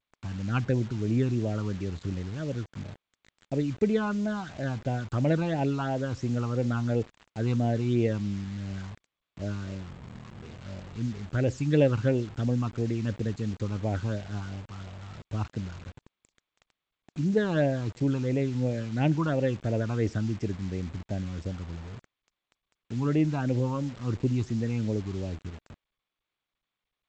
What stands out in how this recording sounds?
phasing stages 12, 2.9 Hz, lowest notch 560–1300 Hz; a quantiser's noise floor 8-bit, dither none; G.722

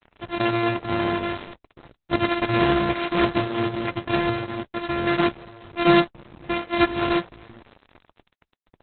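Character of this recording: a buzz of ramps at a fixed pitch in blocks of 128 samples; tremolo triangle 0.56 Hz, depth 45%; a quantiser's noise floor 8-bit, dither none; Opus

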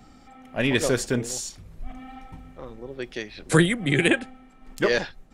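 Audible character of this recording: noise floor -52 dBFS; spectral tilt -4.5 dB/octave

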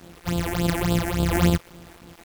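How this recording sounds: a buzz of ramps at a fixed pitch in blocks of 256 samples; phasing stages 8, 3.5 Hz, lowest notch 140–2000 Hz; a quantiser's noise floor 8-bit, dither none

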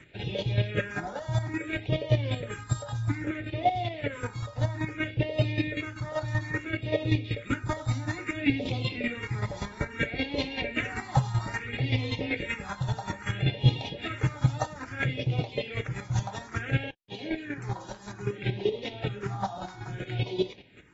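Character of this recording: chopped level 5.2 Hz, depth 65%, duty 20%; phasing stages 4, 0.6 Hz, lowest notch 390–1500 Hz; AAC

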